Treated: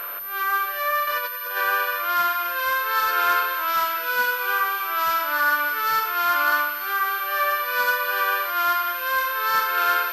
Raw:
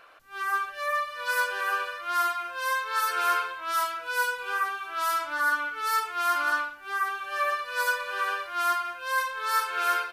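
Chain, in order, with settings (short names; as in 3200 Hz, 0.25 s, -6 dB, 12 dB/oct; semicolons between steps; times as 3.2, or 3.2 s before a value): per-bin compression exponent 0.6; 1.07–1.57 negative-ratio compressor -31 dBFS, ratio -0.5; thin delay 0.295 s, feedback 71%, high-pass 2100 Hz, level -10 dB; pulse-width modulation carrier 13000 Hz; gain +2.5 dB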